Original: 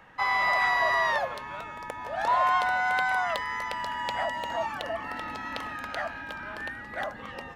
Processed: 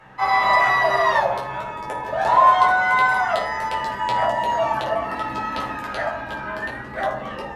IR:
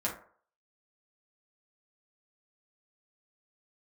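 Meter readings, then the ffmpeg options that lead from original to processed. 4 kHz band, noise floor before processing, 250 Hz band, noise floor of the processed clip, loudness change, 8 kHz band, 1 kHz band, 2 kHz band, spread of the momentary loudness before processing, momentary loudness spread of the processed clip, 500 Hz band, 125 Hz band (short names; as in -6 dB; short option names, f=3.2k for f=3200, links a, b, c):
+5.0 dB, -42 dBFS, +9.0 dB, -33 dBFS, +8.0 dB, n/a, +9.0 dB, +5.5 dB, 14 LU, 14 LU, +10.0 dB, +11.0 dB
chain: -filter_complex "[1:a]atrim=start_sample=2205,asetrate=27783,aresample=44100[a];[0:a][a]afir=irnorm=-1:irlink=0"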